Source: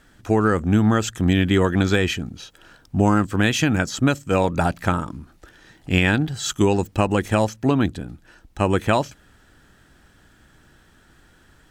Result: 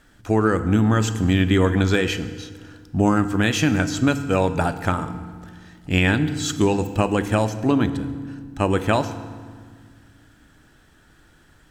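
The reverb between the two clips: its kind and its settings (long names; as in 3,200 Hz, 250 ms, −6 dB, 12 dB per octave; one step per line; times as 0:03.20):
feedback delay network reverb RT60 1.7 s, low-frequency decay 1.6×, high-frequency decay 0.75×, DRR 10 dB
level −1 dB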